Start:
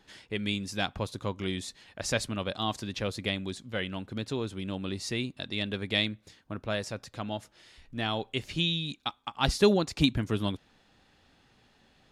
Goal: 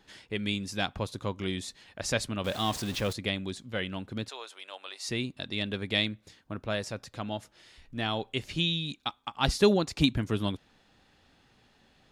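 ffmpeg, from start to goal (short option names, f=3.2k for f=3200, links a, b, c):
-filter_complex "[0:a]asettb=1/sr,asplit=3[a][b][c];[a]atrim=end=2.444[d];[b]atrim=start=2.44:end=3.13,asetpts=PTS-STARTPTS,afade=t=in:d=0.004:c=qsin,afade=t=out:st=0.686:d=0.004:c=qsin,aeval=exprs='val(0)+0.5*0.0178*sgn(val(0))':c=same[e];[c]atrim=start=3.126[f];[d][e]acrossfade=d=0.004:c1=hsin:c2=qsin[g];[g][f]acrossfade=d=0.004:c1=qsin:c2=hsin,asettb=1/sr,asplit=3[h][i][j];[h]atrim=end=4.294[k];[i]atrim=start=4.29:end=5.09,asetpts=PTS-STARTPTS,afade=t=in:d=0.004:c=qsin,afade=t=out:st=0.796:d=0.004:c=qsin,highpass=f=630:w=0.5412,highpass=f=630:w=1.3066[l];[j]atrim=start=5.086[m];[k][l]acrossfade=d=0.004:c1=hsin:c2=qsin[n];[n][m]acrossfade=d=0.004:c1=qsin:c2=hsin"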